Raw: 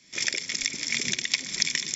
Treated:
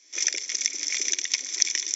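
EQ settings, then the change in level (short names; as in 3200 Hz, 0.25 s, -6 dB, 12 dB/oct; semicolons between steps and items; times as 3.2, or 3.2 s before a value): steep high-pass 280 Hz 72 dB/oct; bell 6000 Hz +14 dB 0.21 oct; -4.0 dB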